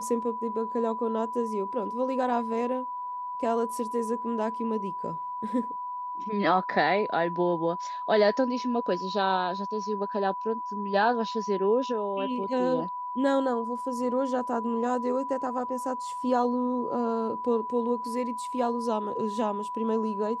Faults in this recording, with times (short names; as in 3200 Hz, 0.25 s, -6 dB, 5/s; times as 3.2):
tone 990 Hz -32 dBFS